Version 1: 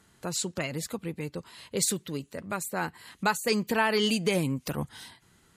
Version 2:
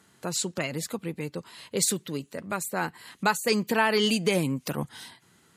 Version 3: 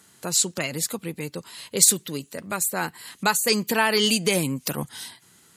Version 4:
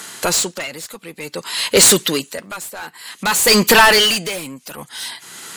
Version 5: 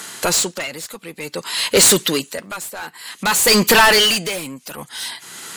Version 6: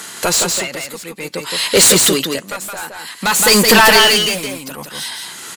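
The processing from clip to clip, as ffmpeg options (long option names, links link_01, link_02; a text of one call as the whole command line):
ffmpeg -i in.wav -af "highpass=120,volume=2dB" out.wav
ffmpeg -i in.wav -af "highshelf=frequency=4000:gain=10.5,volume=1dB" out.wav
ffmpeg -i in.wav -filter_complex "[0:a]asplit=2[link_01][link_02];[link_02]highpass=frequency=720:poles=1,volume=30dB,asoftclip=type=tanh:threshold=-1dB[link_03];[link_01][link_03]amix=inputs=2:normalize=0,lowpass=frequency=6700:poles=1,volume=-6dB,aeval=exprs='val(0)*pow(10,-20*(0.5-0.5*cos(2*PI*0.54*n/s))/20)':channel_layout=same,volume=1dB" out.wav
ffmpeg -i in.wav -af "acontrast=38,volume=-5dB" out.wav
ffmpeg -i in.wav -af "aecho=1:1:168:0.631,volume=2dB" out.wav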